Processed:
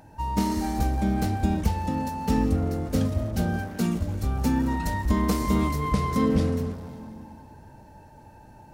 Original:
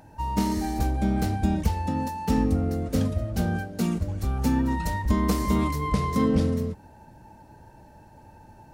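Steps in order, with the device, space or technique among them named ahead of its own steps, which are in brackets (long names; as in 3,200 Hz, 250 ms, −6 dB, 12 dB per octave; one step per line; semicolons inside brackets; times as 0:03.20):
saturated reverb return (on a send at −6.5 dB: convolution reverb RT60 2.0 s, pre-delay 119 ms + soft clipping −29 dBFS, distortion −7 dB)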